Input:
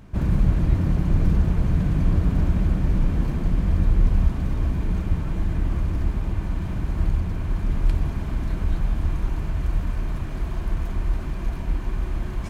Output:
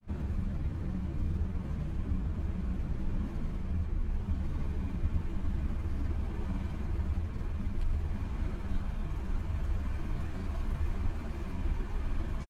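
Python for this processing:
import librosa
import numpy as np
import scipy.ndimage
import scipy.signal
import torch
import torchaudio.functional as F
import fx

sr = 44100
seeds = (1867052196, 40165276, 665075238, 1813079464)

y = fx.granulator(x, sr, seeds[0], grain_ms=100.0, per_s=20.0, spray_ms=100.0, spread_st=0)
y = fx.rider(y, sr, range_db=4, speed_s=0.5)
y = fx.ensemble(y, sr)
y = y * librosa.db_to_amplitude(-6.5)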